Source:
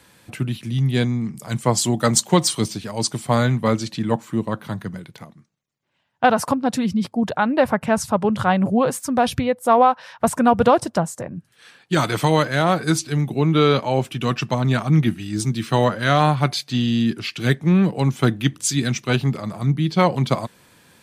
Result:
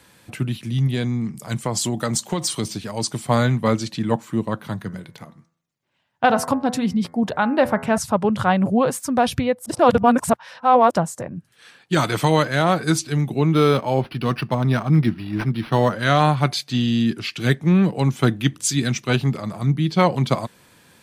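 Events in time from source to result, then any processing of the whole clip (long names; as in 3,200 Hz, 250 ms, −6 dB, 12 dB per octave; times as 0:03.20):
0:00.87–0:03.23: downward compressor, threshold −18 dBFS
0:04.81–0:07.98: hum removal 83.19 Hz, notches 26
0:09.66–0:10.91: reverse
0:13.54–0:15.93: linearly interpolated sample-rate reduction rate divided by 6×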